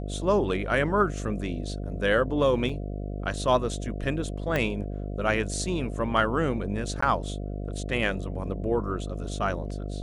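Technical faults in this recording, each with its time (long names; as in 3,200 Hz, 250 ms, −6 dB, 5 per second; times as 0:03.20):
mains buzz 50 Hz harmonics 14 −33 dBFS
0:02.69: drop-out 4.3 ms
0:04.56: click −13 dBFS
0:07.01–0:07.02: drop-out 14 ms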